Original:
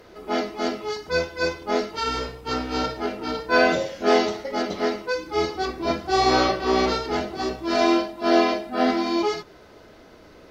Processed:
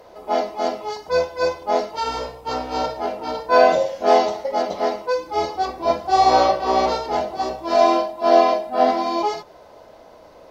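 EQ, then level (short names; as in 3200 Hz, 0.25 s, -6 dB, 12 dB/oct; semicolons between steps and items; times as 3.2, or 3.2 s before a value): band shelf 730 Hz +11.5 dB 1.3 oct; high shelf 4600 Hz +5.5 dB; -4.0 dB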